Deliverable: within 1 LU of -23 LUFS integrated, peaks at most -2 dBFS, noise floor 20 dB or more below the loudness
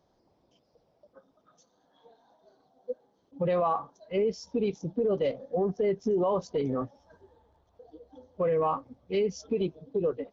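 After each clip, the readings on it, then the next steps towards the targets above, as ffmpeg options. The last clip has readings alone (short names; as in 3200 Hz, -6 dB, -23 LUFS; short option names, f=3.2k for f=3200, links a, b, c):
loudness -30.0 LUFS; peak -17.5 dBFS; loudness target -23.0 LUFS
-> -af "volume=7dB"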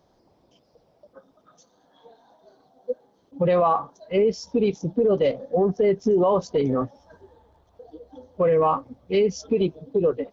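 loudness -23.0 LUFS; peak -10.5 dBFS; noise floor -64 dBFS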